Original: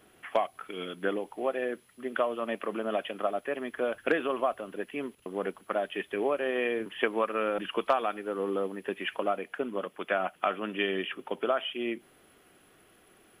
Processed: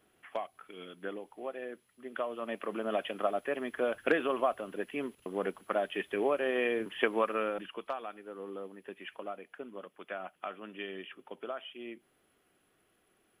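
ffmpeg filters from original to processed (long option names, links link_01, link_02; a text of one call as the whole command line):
ffmpeg -i in.wav -af "volume=-1dB,afade=type=in:start_time=2.02:duration=1.08:silence=0.375837,afade=type=out:start_time=7.3:duration=0.43:silence=0.298538" out.wav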